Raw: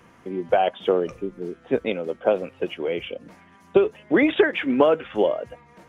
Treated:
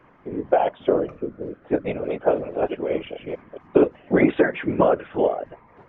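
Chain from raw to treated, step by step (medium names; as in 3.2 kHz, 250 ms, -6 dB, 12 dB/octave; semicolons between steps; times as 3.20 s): 1.79–4.25 s: chunks repeated in reverse 223 ms, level -4 dB; low-pass 1.9 kHz 12 dB/octave; hum notches 50/100/150/200/250 Hz; whisper effect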